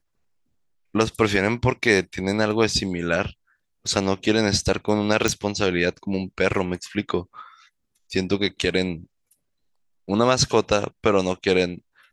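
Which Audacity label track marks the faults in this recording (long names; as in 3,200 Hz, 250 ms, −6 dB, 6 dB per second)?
5.280000	5.280000	click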